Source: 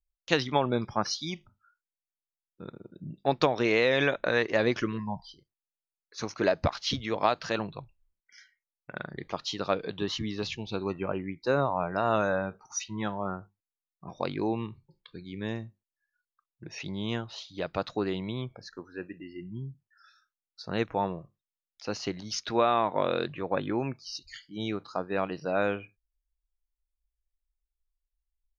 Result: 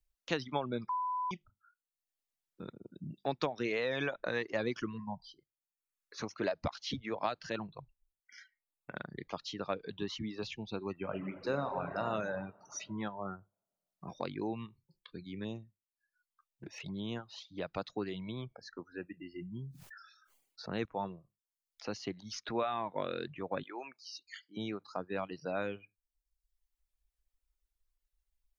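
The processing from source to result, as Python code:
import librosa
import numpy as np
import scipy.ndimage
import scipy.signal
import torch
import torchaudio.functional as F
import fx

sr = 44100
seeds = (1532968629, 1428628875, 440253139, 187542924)

y = fx.reverb_throw(x, sr, start_s=10.93, length_s=1.09, rt60_s=2.0, drr_db=3.5)
y = fx.env_flanger(y, sr, rest_ms=11.3, full_db=-30.5, at=(15.43, 17.15), fade=0.02)
y = fx.sustainer(y, sr, db_per_s=50.0, at=(19.36, 20.85))
y = fx.highpass(y, sr, hz=580.0, slope=12, at=(23.63, 24.57))
y = fx.edit(y, sr, fx.bleep(start_s=0.89, length_s=0.42, hz=1000.0, db=-23.0), tone=tone)
y = fx.dereverb_blind(y, sr, rt60_s=0.72)
y = fx.peak_eq(y, sr, hz=220.0, db=2.0, octaves=0.77)
y = fx.band_squash(y, sr, depth_pct=40)
y = y * librosa.db_to_amplitude(-7.5)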